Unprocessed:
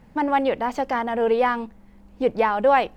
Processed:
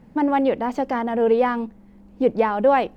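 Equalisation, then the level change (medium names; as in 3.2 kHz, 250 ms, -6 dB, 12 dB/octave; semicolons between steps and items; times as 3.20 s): peaking EQ 260 Hz +8.5 dB 2.4 oct; -3.5 dB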